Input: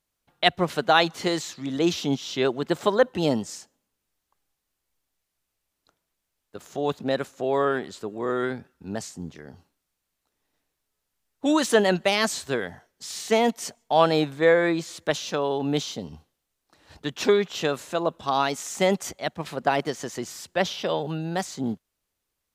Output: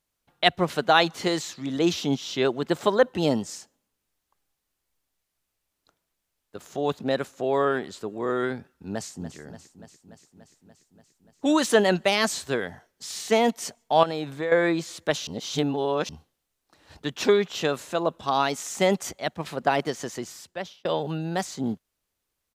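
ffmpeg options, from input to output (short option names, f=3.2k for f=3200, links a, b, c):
-filter_complex "[0:a]asplit=2[a][b];[b]afade=t=in:st=8.91:d=0.01,afade=t=out:st=9.38:d=0.01,aecho=0:1:290|580|870|1160|1450|1740|2030|2320|2610|2900|3190|3480:0.237137|0.177853|0.13339|0.100042|0.0750317|0.0562738|0.0422054|0.031654|0.0237405|0.0178054|0.013354|0.0100155[c];[a][c]amix=inputs=2:normalize=0,asettb=1/sr,asplit=3[d][e][f];[d]atrim=end=14.034[g];[e]atrim=start=14.03:end=14.52,asetpts=PTS-STARTPTS,afade=t=in:d=0.004:c=qsin,afade=t=out:st=0.486:d=0.004:c=qsin,acompressor=threshold=-26dB:ratio=4:attack=3.2:release=140:knee=1:detection=peak[h];[f]atrim=start=14.516[i];[g][h]acrossfade=d=0.004:c1=hsin:c2=qsin[j];[j][i]acrossfade=d=0.004:c1=qsin:c2=hsin,asplit=4[k][l][m][n];[k]atrim=end=15.272[o];[l]atrim=start=15.268:end=16.092,asetpts=PTS-STARTPTS,areverse[p];[m]atrim=start=16.088:end=20.85,asetpts=PTS-STARTPTS,afade=t=out:st=3.992:d=0.77[q];[n]atrim=start=20.85,asetpts=PTS-STARTPTS,afade=t=in:d=0.004:c=hsin[r];[o][p]acrossfade=d=0.004:c1=hsin:c2=hsin[s];[q][r]concat=n=2:v=0:a=1[t];[s][t]acrossfade=d=0.004:c1=hsin:c2=hsin"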